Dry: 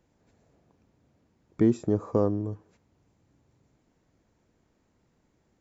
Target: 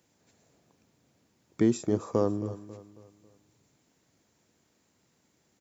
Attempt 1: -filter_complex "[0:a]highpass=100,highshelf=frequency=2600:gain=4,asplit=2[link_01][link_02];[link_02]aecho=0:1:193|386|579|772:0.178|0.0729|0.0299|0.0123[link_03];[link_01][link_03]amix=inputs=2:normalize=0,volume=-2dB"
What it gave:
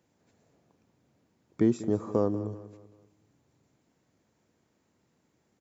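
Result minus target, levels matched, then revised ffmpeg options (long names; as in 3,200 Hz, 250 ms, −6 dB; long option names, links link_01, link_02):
4,000 Hz band −7.0 dB; echo 79 ms early
-filter_complex "[0:a]highpass=100,highshelf=frequency=2600:gain=13.5,asplit=2[link_01][link_02];[link_02]aecho=0:1:272|544|816|1088:0.178|0.0729|0.0299|0.0123[link_03];[link_01][link_03]amix=inputs=2:normalize=0,volume=-2dB"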